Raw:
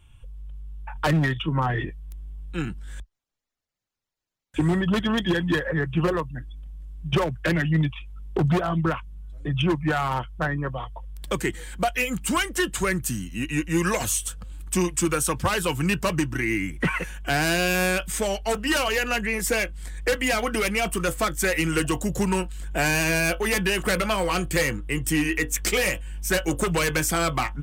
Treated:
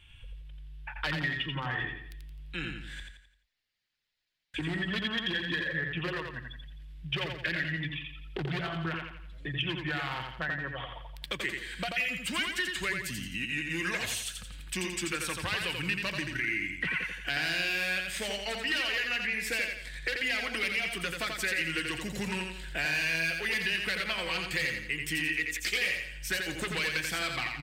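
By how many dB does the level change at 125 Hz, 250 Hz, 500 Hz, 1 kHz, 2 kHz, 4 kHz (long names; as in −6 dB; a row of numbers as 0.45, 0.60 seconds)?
−13.0, −13.0, −13.5, −12.0, −3.0, −2.0 decibels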